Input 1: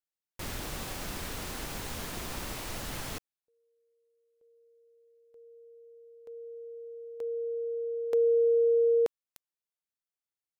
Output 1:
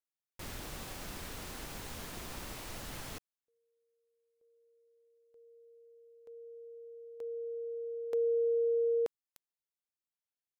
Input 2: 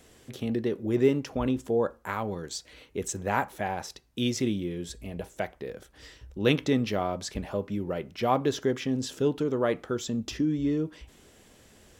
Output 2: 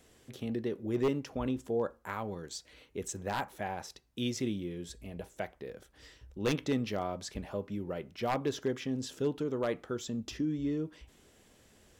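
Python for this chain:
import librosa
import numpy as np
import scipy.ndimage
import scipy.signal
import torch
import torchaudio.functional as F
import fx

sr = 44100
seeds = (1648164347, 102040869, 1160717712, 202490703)

y = 10.0 ** (-15.5 / 20.0) * (np.abs((x / 10.0 ** (-15.5 / 20.0) + 3.0) % 4.0 - 2.0) - 1.0)
y = y * librosa.db_to_amplitude(-6.0)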